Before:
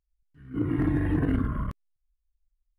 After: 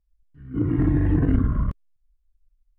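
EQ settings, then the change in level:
spectral tilt −2 dB per octave
0.0 dB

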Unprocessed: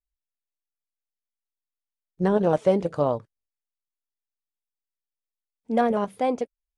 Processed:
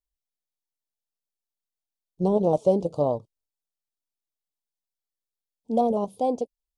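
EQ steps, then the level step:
Chebyshev band-stop filter 820–3,600 Hz, order 2
dynamic equaliser 3,200 Hz, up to −5 dB, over −47 dBFS, Q 1.5
0.0 dB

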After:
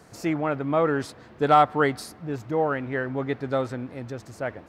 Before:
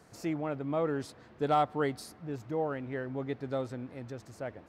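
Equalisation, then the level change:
dynamic equaliser 1,500 Hz, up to +6 dB, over −48 dBFS, Q 0.87
+7.0 dB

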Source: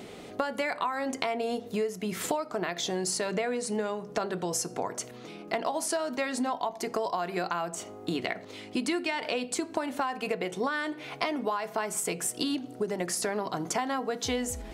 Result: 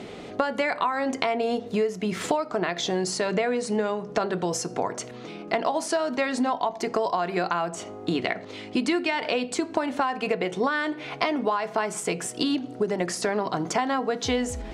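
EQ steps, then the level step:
high-frequency loss of the air 66 metres
+5.5 dB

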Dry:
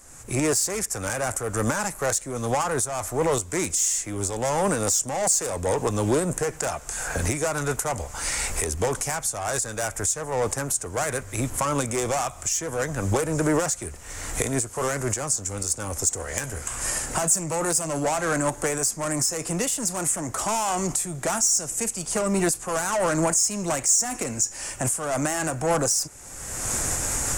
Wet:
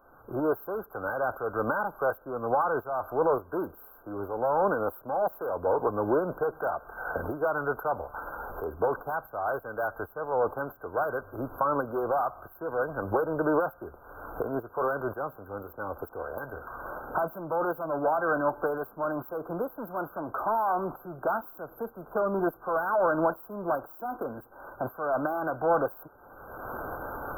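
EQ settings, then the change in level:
linear-phase brick-wall band-stop 1,600–12,000 Hz
bass and treble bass −14 dB, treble −8 dB
0.0 dB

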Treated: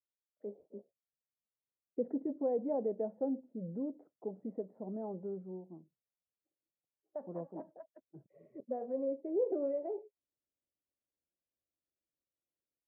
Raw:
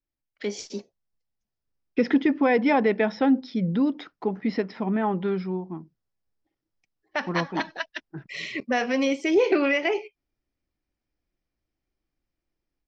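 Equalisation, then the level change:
high-pass filter 80 Hz
transistor ladder low-pass 650 Hz, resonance 60%
high-frequency loss of the air 250 metres
−7.0 dB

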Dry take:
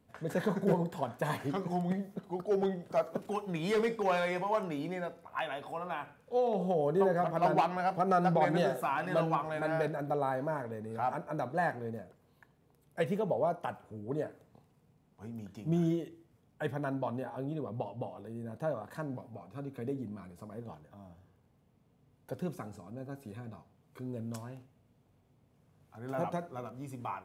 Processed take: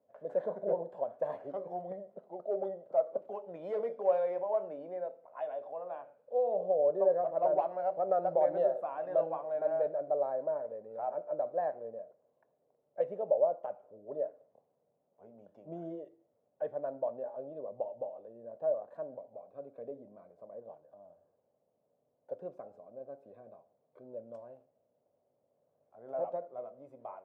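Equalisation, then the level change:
resonant band-pass 580 Hz, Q 7.1
+7.5 dB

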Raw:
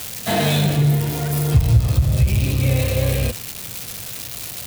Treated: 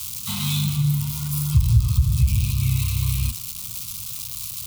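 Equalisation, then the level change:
Chebyshev band-stop filter 240–1,100 Hz, order 3
phaser with its sweep stopped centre 710 Hz, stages 4
0.0 dB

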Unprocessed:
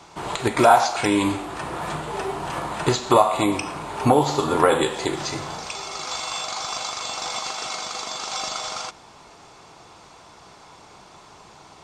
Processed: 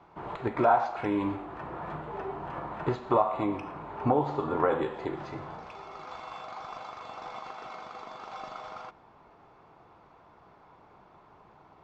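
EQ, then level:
low-pass filter 1,600 Hz 12 dB per octave
−8.0 dB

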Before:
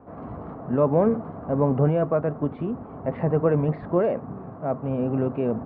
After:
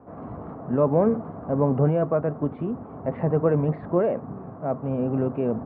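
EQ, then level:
high-pass filter 60 Hz
low-pass filter 2,300 Hz 6 dB per octave
0.0 dB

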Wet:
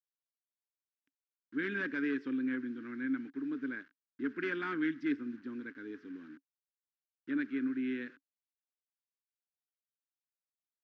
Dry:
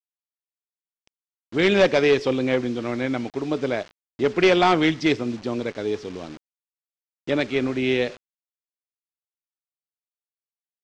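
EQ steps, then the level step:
pair of resonant band-passes 660 Hz, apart 2.5 octaves
−4.5 dB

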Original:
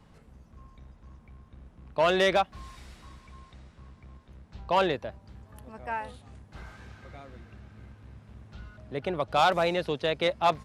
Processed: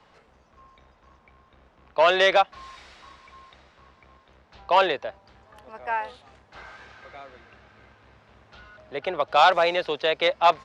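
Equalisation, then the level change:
three-way crossover with the lows and the highs turned down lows −17 dB, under 420 Hz, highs −23 dB, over 6,400 Hz
+6.5 dB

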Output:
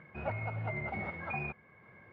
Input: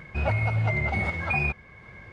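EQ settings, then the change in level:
band-pass filter 140–2,000 Hz
−8.0 dB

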